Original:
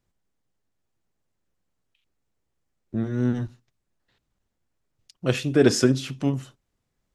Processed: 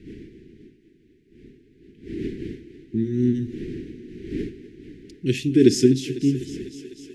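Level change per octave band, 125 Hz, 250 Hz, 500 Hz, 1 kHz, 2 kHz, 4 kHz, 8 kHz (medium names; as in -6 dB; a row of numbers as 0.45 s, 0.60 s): +0.5 dB, +4.5 dB, +1.5 dB, under -25 dB, -5.0 dB, -0.5 dB, -0.5 dB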